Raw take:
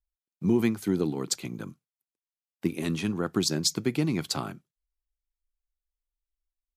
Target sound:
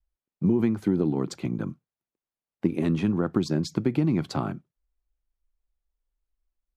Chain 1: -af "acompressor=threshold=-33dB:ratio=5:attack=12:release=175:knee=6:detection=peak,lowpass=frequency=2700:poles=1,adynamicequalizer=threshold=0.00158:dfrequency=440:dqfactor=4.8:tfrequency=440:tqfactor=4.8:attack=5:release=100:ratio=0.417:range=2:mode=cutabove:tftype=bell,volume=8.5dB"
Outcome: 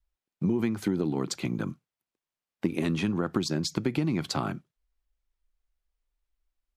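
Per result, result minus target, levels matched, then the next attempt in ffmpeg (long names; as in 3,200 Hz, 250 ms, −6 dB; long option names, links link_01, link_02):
2,000 Hz band +6.5 dB; downward compressor: peak gain reduction +5 dB
-af "acompressor=threshold=-33dB:ratio=5:attack=12:release=175:knee=6:detection=peak,lowpass=frequency=800:poles=1,adynamicequalizer=threshold=0.00158:dfrequency=440:dqfactor=4.8:tfrequency=440:tqfactor=4.8:attack=5:release=100:ratio=0.417:range=2:mode=cutabove:tftype=bell,volume=8.5dB"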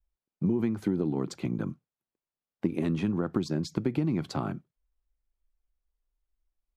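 downward compressor: peak gain reduction +5 dB
-af "acompressor=threshold=-27dB:ratio=5:attack=12:release=175:knee=6:detection=peak,lowpass=frequency=800:poles=1,adynamicequalizer=threshold=0.00158:dfrequency=440:dqfactor=4.8:tfrequency=440:tqfactor=4.8:attack=5:release=100:ratio=0.417:range=2:mode=cutabove:tftype=bell,volume=8.5dB"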